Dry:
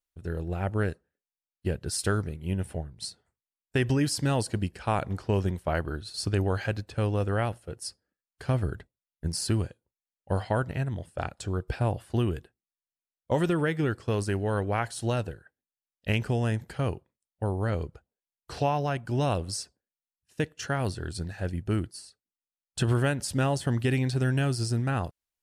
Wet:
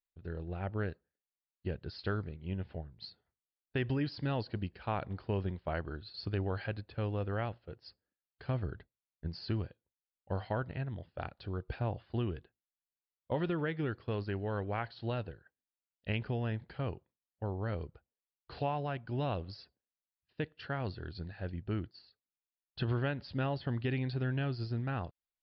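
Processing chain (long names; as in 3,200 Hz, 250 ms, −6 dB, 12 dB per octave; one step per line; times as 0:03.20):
Butterworth low-pass 4,800 Hz 96 dB per octave
level −8 dB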